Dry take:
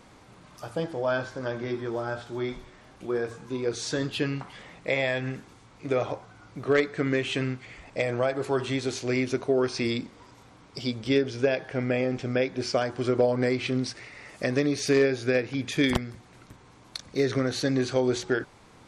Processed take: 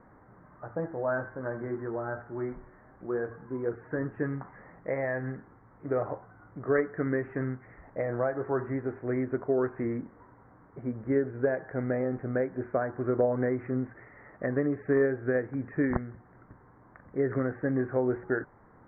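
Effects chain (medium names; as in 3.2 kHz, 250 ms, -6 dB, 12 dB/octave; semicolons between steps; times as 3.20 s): steep low-pass 1.9 kHz 72 dB/octave; trim -3 dB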